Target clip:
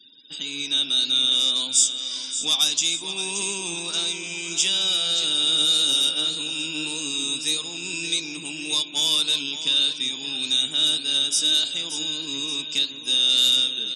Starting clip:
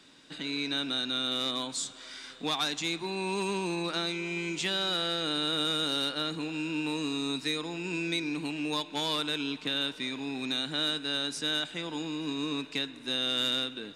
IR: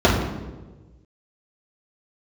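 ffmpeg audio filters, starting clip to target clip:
-filter_complex "[0:a]asuperstop=centerf=4200:order=8:qfactor=4.9,asplit=2[a][b];[b]aecho=0:1:575|1150|1725|2300|2875:0.299|0.143|0.0688|0.033|0.0158[c];[a][c]amix=inputs=2:normalize=0,flanger=delay=7.2:depth=6.2:regen=73:speed=1.7:shape=sinusoidal,afftfilt=real='re*gte(hypot(re,im),0.00141)':imag='im*gte(hypot(re,im),0.00141)':win_size=1024:overlap=0.75,aexciter=amount=7.1:drive=7.5:freq=2.9k"

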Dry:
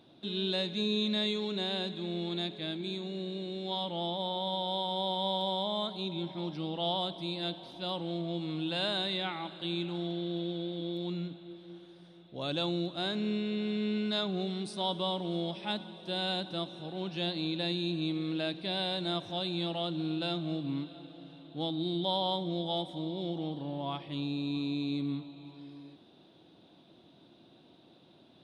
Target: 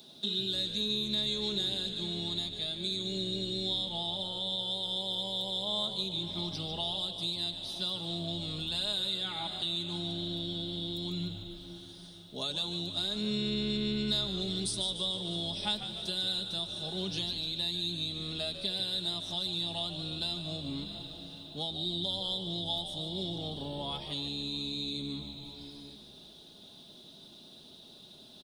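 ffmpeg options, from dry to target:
-filter_complex "[0:a]acrossover=split=110|560|2500[a][b][c][d];[d]aexciter=amount=3.2:drive=9.4:freq=3.3k[e];[a][b][c][e]amix=inputs=4:normalize=0,acompressor=threshold=-34dB:ratio=4,aecho=1:1:4.8:0.62,asplit=6[f][g][h][i][j][k];[g]adelay=148,afreqshift=-74,volume=-10dB[l];[h]adelay=296,afreqshift=-148,volume=-16dB[m];[i]adelay=444,afreqshift=-222,volume=-22dB[n];[j]adelay=592,afreqshift=-296,volume=-28.1dB[o];[k]adelay=740,afreqshift=-370,volume=-34.1dB[p];[f][l][m][n][o][p]amix=inputs=6:normalize=0"

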